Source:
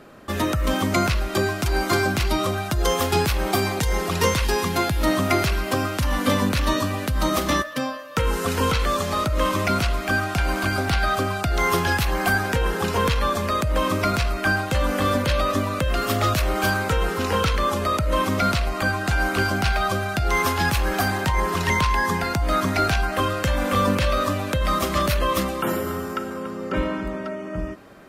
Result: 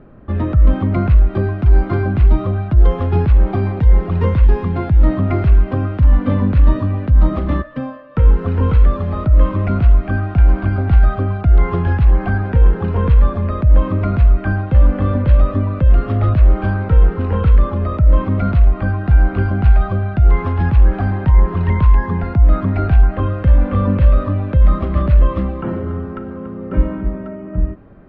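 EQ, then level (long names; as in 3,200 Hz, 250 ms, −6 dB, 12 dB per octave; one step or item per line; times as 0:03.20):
high-frequency loss of the air 380 metres
RIAA equalisation playback
−2.0 dB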